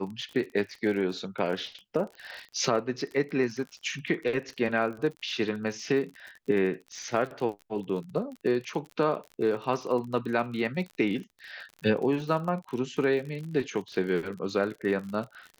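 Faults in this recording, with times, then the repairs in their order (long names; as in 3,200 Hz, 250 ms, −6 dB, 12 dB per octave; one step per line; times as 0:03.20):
surface crackle 44 per second −36 dBFS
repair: click removal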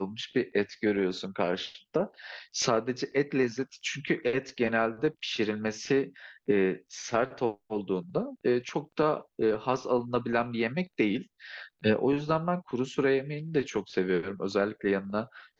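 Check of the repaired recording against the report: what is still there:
none of them is left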